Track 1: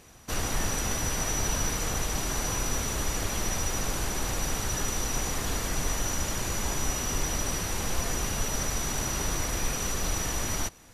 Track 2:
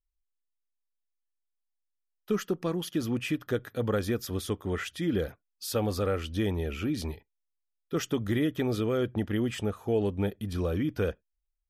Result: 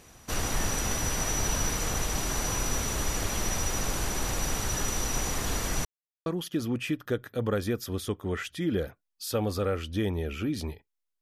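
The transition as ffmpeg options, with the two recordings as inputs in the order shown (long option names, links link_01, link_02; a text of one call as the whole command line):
ffmpeg -i cue0.wav -i cue1.wav -filter_complex "[0:a]apad=whole_dur=11.21,atrim=end=11.21,asplit=2[link_01][link_02];[link_01]atrim=end=5.85,asetpts=PTS-STARTPTS,afade=type=out:start_time=5.846:duration=0.004:curve=hsin[link_03];[link_02]atrim=start=5.85:end=6.26,asetpts=PTS-STARTPTS,volume=0[link_04];[1:a]atrim=start=2.67:end=7.62,asetpts=PTS-STARTPTS,afade=type=in:duration=0.004:curve=hsin[link_05];[link_03][link_04][link_05]concat=n=3:v=0:a=1" out.wav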